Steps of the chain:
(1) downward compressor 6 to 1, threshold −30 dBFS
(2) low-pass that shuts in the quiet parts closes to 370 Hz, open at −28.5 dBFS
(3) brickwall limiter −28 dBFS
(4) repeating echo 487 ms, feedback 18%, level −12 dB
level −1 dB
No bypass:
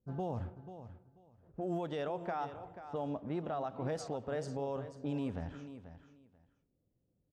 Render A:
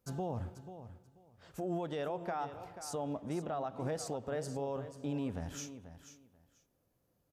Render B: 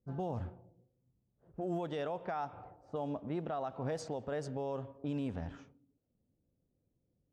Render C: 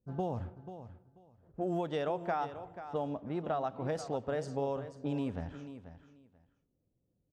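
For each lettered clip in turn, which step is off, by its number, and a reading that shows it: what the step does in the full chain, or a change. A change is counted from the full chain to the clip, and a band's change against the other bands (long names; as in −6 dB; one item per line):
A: 2, 8 kHz band +10.5 dB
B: 4, change in momentary loudness spread −7 LU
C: 3, change in crest factor +2.5 dB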